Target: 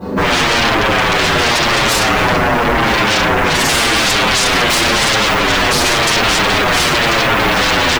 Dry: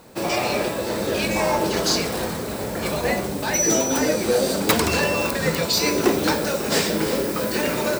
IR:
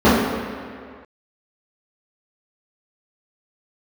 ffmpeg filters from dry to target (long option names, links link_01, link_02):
-filter_complex "[1:a]atrim=start_sample=2205,atrim=end_sample=3969[link_01];[0:a][link_01]afir=irnorm=-1:irlink=0,acontrast=36,asplit=2[link_02][link_03];[link_03]adelay=7.5,afreqshift=-0.92[link_04];[link_02][link_04]amix=inputs=2:normalize=1,volume=-7dB"